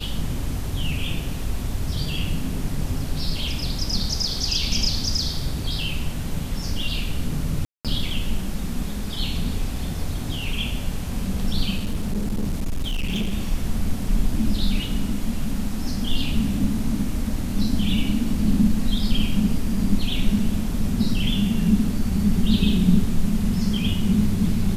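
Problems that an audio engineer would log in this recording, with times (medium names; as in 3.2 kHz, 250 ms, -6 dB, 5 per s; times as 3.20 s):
7.65–7.85 s: dropout 197 ms
11.77–13.33 s: clipped -20 dBFS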